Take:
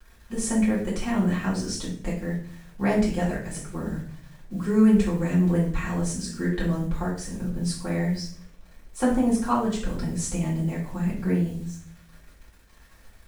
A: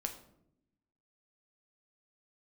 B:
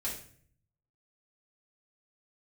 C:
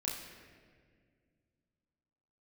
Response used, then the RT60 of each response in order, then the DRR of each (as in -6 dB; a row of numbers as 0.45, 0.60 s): B; 0.75, 0.50, 1.9 s; 4.0, -7.5, -5.5 dB